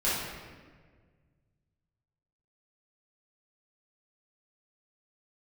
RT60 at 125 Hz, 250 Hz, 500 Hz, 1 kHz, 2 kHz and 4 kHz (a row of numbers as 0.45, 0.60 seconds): 2.8, 2.0, 1.8, 1.4, 1.4, 1.0 seconds